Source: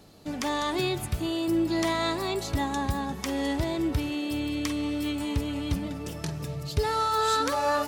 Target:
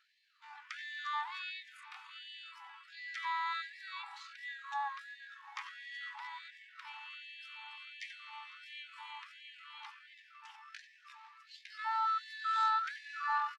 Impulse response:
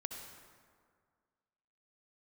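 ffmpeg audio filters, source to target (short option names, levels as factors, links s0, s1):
-filter_complex "[0:a]highpass=130,lowpass=2300,atempo=0.58,asplit=2[s0][s1];[s1]adelay=501.5,volume=0.158,highshelf=f=4000:g=-11.3[s2];[s0][s2]amix=inputs=2:normalize=0,afftfilt=real='re*gte(b*sr/1024,760*pow(1700/760,0.5+0.5*sin(2*PI*1.4*pts/sr)))':imag='im*gte(b*sr/1024,760*pow(1700/760,0.5+0.5*sin(2*PI*1.4*pts/sr)))':win_size=1024:overlap=0.75,volume=0.631"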